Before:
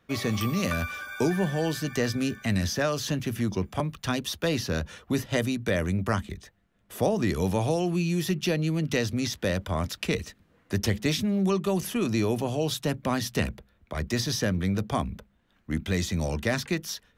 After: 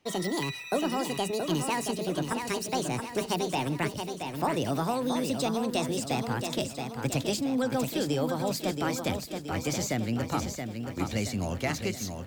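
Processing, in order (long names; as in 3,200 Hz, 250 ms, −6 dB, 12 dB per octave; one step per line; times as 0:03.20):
gliding playback speed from 169% → 111%
feedback echo at a low word length 675 ms, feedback 55%, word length 9 bits, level −6 dB
level −3.5 dB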